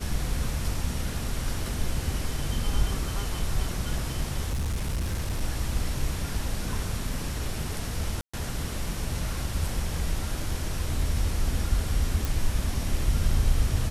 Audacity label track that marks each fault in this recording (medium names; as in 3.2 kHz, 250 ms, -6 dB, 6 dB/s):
4.500000	5.420000	clipped -24.5 dBFS
8.210000	8.340000	dropout 125 ms
12.250000	12.250000	pop